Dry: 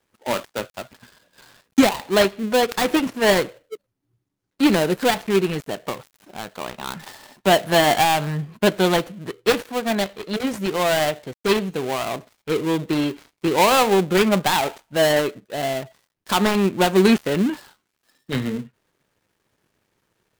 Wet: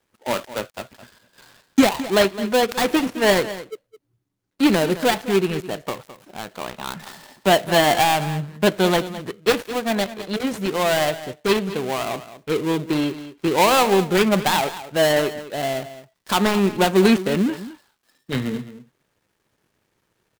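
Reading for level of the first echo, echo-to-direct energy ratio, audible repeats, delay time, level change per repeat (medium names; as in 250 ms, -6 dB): -14.5 dB, -14.5 dB, 1, 212 ms, no regular repeats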